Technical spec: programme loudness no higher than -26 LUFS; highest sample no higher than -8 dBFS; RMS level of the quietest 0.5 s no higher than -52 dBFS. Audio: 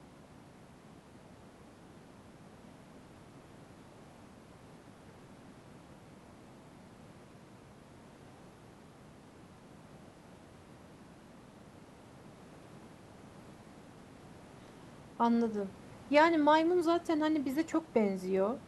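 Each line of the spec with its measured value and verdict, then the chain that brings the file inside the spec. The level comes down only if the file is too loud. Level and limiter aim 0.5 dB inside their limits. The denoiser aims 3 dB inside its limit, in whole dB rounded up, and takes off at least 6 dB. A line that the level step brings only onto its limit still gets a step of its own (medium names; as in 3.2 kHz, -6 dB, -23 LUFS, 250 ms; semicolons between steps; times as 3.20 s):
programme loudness -30.0 LUFS: pass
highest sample -12.0 dBFS: pass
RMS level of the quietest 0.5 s -56 dBFS: pass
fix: none needed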